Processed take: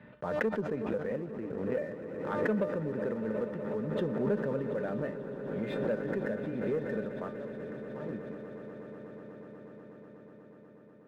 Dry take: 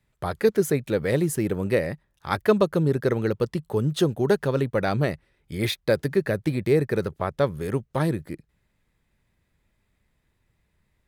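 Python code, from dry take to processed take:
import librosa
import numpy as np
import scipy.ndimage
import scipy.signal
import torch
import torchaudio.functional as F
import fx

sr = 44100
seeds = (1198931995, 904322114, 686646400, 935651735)

y = fx.level_steps(x, sr, step_db=16, at=(7.36, 8.09))
y = fx.comb_fb(y, sr, f0_hz=300.0, decay_s=0.28, harmonics='all', damping=0.0, mix_pct=80)
y = fx.lpc_vocoder(y, sr, seeds[0], excitation='pitch_kept', order=10, at=(0.84, 1.82))
y = fx.cabinet(y, sr, low_hz=180.0, low_slope=12, high_hz=2300.0, hz=(220.0, 320.0, 490.0, 780.0, 1200.0, 2200.0), db=(10, -9, 5, -5, -4, -9))
y = fx.leveller(y, sr, passes=1)
y = fx.low_shelf(y, sr, hz=440.0, db=4.5, at=(3.93, 4.62))
y = fx.echo_swell(y, sr, ms=122, loudest=8, wet_db=-16.5)
y = fx.pre_swell(y, sr, db_per_s=36.0)
y = y * 10.0 ** (-4.0 / 20.0)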